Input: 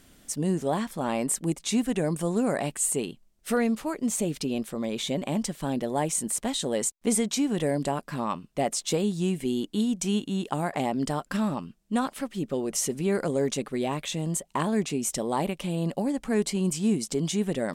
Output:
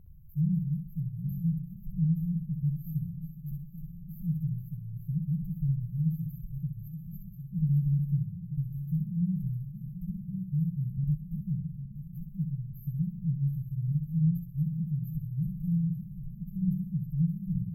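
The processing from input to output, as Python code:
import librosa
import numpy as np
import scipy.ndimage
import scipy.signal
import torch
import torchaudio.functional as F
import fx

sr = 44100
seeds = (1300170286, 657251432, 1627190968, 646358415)

p1 = fx.reverse_delay_fb(x, sr, ms=439, feedback_pct=70, wet_db=-11.0)
p2 = fx.brickwall_bandstop(p1, sr, low_hz=170.0, high_hz=12000.0)
p3 = fx.tilt_shelf(p2, sr, db=9.0, hz=970.0)
y = p3 + fx.echo_feedback(p3, sr, ms=64, feedback_pct=34, wet_db=-6.5, dry=0)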